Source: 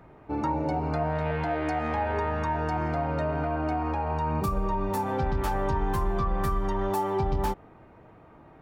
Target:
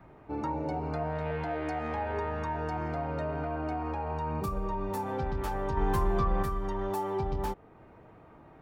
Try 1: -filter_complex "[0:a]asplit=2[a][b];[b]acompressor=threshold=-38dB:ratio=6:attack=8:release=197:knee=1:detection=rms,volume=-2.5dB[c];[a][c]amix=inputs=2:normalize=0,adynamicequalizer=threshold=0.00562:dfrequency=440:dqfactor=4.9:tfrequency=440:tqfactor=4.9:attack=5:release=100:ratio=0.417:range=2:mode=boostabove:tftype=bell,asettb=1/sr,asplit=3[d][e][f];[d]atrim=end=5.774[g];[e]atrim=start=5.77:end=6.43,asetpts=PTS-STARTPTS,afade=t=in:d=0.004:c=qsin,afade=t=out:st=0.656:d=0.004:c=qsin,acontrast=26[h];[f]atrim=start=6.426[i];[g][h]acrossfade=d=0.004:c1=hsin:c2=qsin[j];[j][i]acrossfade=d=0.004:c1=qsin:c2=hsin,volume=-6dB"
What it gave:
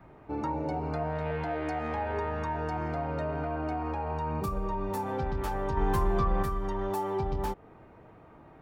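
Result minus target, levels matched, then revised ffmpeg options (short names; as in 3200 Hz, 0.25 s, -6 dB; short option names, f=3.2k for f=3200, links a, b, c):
compressor: peak gain reduction -9 dB
-filter_complex "[0:a]asplit=2[a][b];[b]acompressor=threshold=-49dB:ratio=6:attack=8:release=197:knee=1:detection=rms,volume=-2.5dB[c];[a][c]amix=inputs=2:normalize=0,adynamicequalizer=threshold=0.00562:dfrequency=440:dqfactor=4.9:tfrequency=440:tqfactor=4.9:attack=5:release=100:ratio=0.417:range=2:mode=boostabove:tftype=bell,asettb=1/sr,asplit=3[d][e][f];[d]atrim=end=5.774[g];[e]atrim=start=5.77:end=6.43,asetpts=PTS-STARTPTS,afade=t=in:d=0.004:c=qsin,afade=t=out:st=0.656:d=0.004:c=qsin,acontrast=26[h];[f]atrim=start=6.426[i];[g][h]acrossfade=d=0.004:c1=hsin:c2=qsin[j];[j][i]acrossfade=d=0.004:c1=qsin:c2=hsin,volume=-6dB"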